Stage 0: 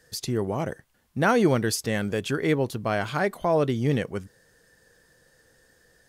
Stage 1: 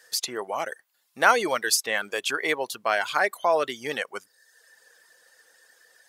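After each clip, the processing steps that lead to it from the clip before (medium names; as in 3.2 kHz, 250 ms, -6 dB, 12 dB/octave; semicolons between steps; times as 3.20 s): reverb removal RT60 0.73 s; high-pass 770 Hz 12 dB/octave; trim +6.5 dB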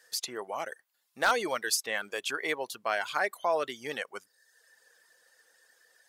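wavefolder -9.5 dBFS; trim -6 dB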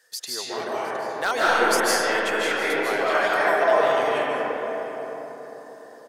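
delay 713 ms -18.5 dB; algorithmic reverb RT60 4.7 s, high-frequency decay 0.3×, pre-delay 115 ms, DRR -9.5 dB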